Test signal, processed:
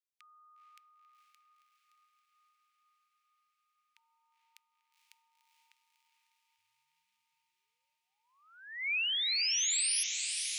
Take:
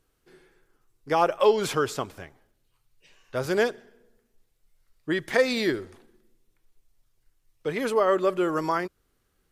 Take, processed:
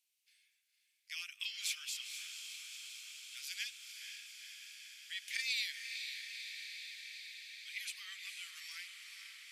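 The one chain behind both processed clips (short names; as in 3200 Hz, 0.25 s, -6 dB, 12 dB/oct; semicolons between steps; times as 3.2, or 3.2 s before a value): elliptic high-pass 2300 Hz, stop band 70 dB; diffused feedback echo 0.485 s, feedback 78%, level -6.5 dB; gain -3.5 dB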